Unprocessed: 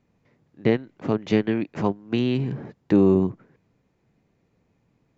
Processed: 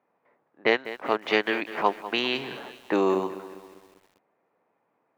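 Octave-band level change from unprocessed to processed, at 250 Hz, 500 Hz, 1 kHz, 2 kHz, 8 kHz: −9.5 dB, −2.0 dB, +7.0 dB, +8.5 dB, can't be measured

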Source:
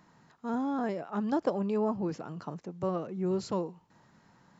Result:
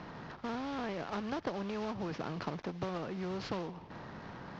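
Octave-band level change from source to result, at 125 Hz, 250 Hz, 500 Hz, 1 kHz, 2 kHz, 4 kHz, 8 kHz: −3.5 dB, −7.0 dB, −7.0 dB, −3.5 dB, +3.5 dB, +4.5 dB, can't be measured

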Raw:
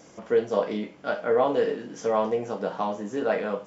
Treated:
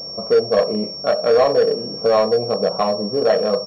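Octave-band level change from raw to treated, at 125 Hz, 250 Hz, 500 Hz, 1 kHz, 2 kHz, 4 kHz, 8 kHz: +8.5 dB, +5.0 dB, +9.0 dB, +6.0 dB, +3.5 dB, +19.0 dB, can't be measured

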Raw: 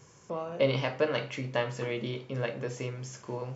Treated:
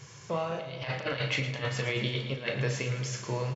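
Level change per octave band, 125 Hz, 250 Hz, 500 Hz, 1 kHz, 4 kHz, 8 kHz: +4.0 dB, −1.0 dB, −3.5 dB, +0.5 dB, +4.5 dB, can't be measured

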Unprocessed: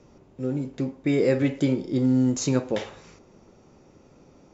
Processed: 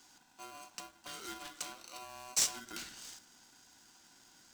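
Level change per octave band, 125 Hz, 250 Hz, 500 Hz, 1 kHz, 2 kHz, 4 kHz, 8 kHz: −37.0 dB, −33.0 dB, −29.0 dB, −5.0 dB, −10.0 dB, 0.0 dB, can't be measured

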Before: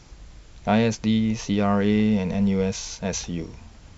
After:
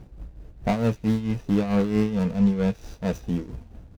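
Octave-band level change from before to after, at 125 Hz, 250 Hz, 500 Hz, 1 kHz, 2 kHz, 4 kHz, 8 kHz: 0.0 dB, −1.0 dB, −2.0 dB, −4.0 dB, −5.5 dB, −9.5 dB, can't be measured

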